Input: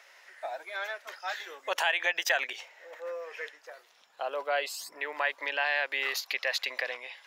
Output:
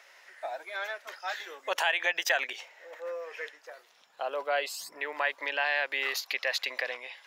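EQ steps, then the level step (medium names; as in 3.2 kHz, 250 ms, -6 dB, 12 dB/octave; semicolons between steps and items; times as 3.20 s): bass shelf 160 Hz +7.5 dB; 0.0 dB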